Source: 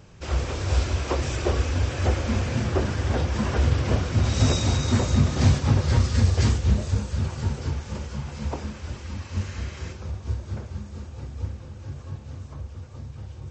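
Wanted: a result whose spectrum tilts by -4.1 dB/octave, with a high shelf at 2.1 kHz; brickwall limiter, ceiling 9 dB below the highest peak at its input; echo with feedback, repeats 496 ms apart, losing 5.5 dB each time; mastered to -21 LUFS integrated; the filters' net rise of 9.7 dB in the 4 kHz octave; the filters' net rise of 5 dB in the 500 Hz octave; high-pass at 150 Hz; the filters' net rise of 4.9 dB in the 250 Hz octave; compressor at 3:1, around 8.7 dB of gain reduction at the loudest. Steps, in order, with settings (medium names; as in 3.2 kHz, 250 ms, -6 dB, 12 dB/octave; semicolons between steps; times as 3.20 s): high-pass 150 Hz; peaking EQ 250 Hz +6 dB; peaking EQ 500 Hz +4 dB; treble shelf 2.1 kHz +4 dB; peaking EQ 4 kHz +8 dB; compression 3:1, threshold -26 dBFS; peak limiter -23 dBFS; feedback delay 496 ms, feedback 53%, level -5.5 dB; trim +10.5 dB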